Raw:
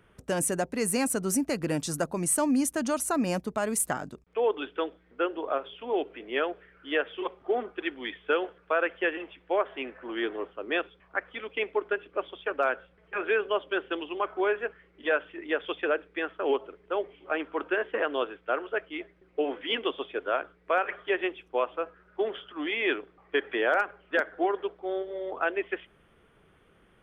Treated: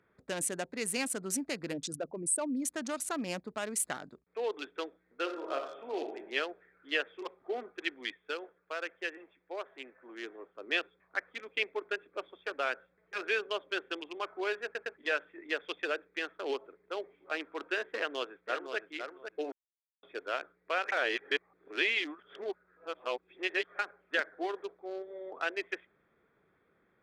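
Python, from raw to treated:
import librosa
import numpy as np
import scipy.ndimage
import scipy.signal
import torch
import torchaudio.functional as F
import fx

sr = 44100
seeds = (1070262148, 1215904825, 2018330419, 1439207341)

y = fx.envelope_sharpen(x, sr, power=2.0, at=(1.72, 2.63), fade=0.02)
y = fx.reverb_throw(y, sr, start_s=5.21, length_s=0.95, rt60_s=0.91, drr_db=2.5)
y = fx.echo_throw(y, sr, start_s=17.96, length_s=0.81, ms=510, feedback_pct=20, wet_db=-6.0)
y = fx.edit(y, sr, fx.clip_gain(start_s=8.12, length_s=2.43, db=-5.0),
    fx.stutter_over(start_s=14.64, slice_s=0.11, count=3),
    fx.silence(start_s=19.52, length_s=0.51),
    fx.reverse_span(start_s=20.92, length_s=2.87), tone=tone)
y = fx.wiener(y, sr, points=15)
y = fx.weighting(y, sr, curve='D')
y = F.gain(torch.from_numpy(y), -8.0).numpy()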